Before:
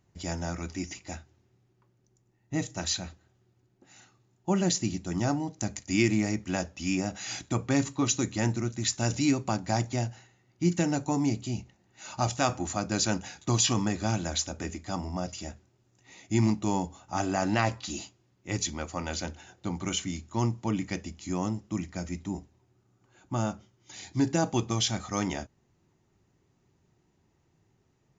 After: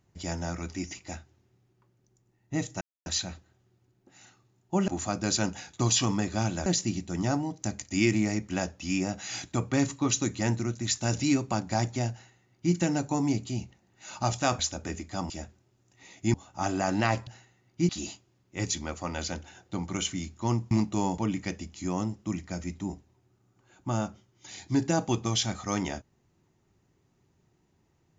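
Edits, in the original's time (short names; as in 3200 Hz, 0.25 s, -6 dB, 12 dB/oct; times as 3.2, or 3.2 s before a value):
2.81 insert silence 0.25 s
10.09–10.71 copy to 17.81
12.56–14.34 move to 4.63
15.05–15.37 cut
16.41–16.88 move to 20.63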